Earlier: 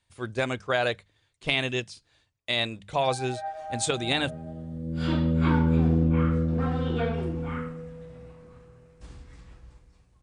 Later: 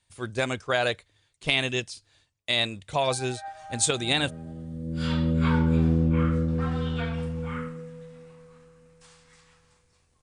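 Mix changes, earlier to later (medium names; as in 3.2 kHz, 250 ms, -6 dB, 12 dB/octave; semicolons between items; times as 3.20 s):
speech: remove hum notches 50/100/150/200 Hz; first sound: add high-pass 850 Hz 24 dB/octave; master: add treble shelf 5.2 kHz +8.5 dB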